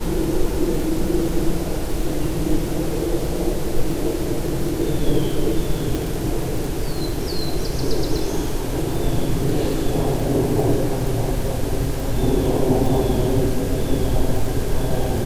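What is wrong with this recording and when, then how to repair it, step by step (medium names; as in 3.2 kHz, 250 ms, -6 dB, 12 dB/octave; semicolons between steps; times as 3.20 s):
crackle 32 per s -25 dBFS
5.95 s: pop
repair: de-click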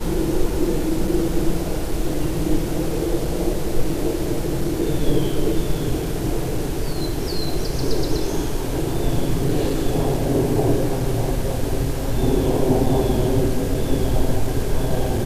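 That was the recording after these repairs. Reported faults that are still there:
nothing left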